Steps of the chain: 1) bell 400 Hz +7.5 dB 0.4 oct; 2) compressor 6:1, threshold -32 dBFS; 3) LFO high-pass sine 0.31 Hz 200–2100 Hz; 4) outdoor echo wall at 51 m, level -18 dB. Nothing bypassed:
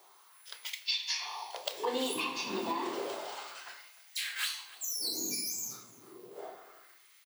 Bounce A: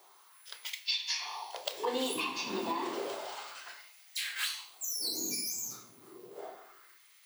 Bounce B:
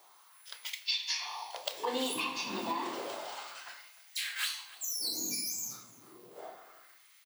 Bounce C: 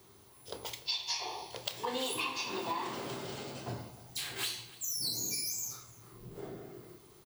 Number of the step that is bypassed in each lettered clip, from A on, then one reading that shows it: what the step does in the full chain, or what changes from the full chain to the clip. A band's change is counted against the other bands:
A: 4, echo-to-direct -19.0 dB to none; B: 1, 500 Hz band -2.5 dB; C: 3, 125 Hz band +14.0 dB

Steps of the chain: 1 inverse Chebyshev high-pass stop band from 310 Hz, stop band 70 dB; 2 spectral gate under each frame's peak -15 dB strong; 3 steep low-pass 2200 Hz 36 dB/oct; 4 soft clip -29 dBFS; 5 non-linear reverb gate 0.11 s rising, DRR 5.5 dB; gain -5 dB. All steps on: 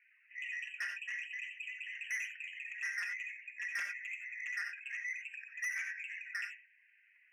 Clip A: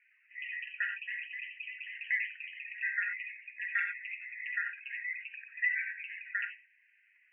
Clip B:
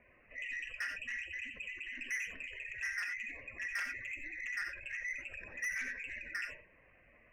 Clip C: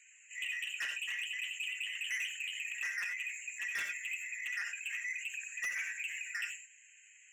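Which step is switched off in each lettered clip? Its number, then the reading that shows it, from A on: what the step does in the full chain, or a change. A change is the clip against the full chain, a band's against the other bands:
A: 4, distortion -8 dB; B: 1, 1 kHz band +3.0 dB; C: 3, 4 kHz band +9.0 dB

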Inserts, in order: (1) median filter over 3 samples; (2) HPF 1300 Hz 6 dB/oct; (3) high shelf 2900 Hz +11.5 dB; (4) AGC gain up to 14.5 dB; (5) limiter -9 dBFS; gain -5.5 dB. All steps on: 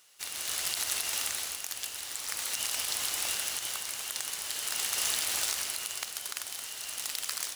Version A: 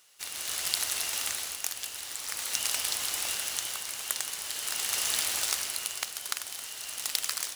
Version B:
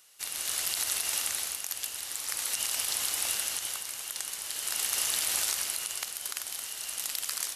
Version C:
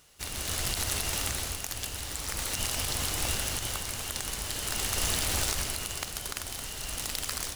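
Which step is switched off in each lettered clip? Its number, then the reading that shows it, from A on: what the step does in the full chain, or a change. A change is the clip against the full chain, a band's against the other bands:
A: 5, crest factor change +7.5 dB; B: 1, loudness change +1.5 LU; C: 2, 125 Hz band +19.5 dB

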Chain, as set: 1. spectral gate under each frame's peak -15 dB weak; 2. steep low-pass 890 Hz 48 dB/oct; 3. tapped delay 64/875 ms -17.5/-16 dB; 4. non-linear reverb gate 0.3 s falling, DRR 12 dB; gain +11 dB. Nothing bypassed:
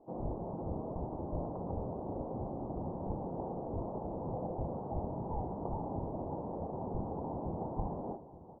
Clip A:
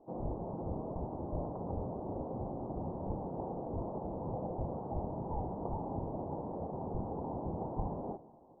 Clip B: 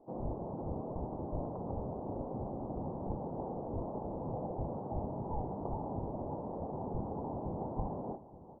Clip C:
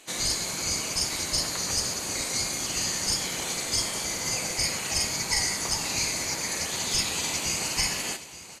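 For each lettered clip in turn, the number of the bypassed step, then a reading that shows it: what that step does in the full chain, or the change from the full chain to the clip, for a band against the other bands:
3, echo-to-direct -9.5 dB to -12.0 dB; 4, echo-to-direct -9.5 dB to -13.5 dB; 2, 1 kHz band +4.0 dB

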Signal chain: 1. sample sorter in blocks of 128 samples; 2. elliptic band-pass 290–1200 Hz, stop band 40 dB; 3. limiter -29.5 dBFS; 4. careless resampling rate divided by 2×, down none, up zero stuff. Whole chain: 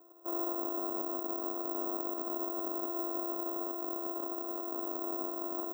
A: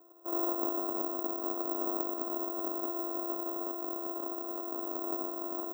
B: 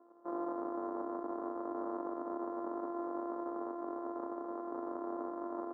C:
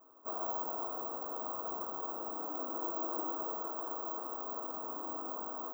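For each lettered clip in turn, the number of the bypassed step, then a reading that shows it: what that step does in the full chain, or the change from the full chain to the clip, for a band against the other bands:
3, crest factor change +5.5 dB; 4, crest factor change -3.0 dB; 1, crest factor change +3.0 dB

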